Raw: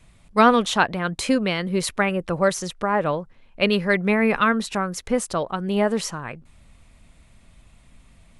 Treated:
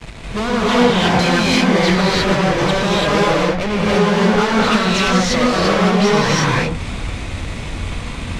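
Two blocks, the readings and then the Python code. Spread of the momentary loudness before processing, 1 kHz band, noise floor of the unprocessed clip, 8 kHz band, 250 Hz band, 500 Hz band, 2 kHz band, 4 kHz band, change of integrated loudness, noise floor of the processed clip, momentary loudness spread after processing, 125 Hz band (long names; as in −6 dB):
9 LU, +6.0 dB, −54 dBFS, +6.0 dB, +8.0 dB, +6.5 dB, +7.0 dB, +11.0 dB, +7.0 dB, −27 dBFS, 13 LU, +12.0 dB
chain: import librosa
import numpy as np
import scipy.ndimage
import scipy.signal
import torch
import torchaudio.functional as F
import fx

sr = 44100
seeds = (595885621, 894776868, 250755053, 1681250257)

y = fx.env_lowpass_down(x, sr, base_hz=590.0, full_db=-15.0)
y = fx.fuzz(y, sr, gain_db=46.0, gate_db=-53.0)
y = scipy.signal.sosfilt(scipy.signal.butter(2, 5700.0, 'lowpass', fs=sr, output='sos'), y)
y = fx.rev_gated(y, sr, seeds[0], gate_ms=370, shape='rising', drr_db=-7.0)
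y = y * librosa.db_to_amplitude(-7.0)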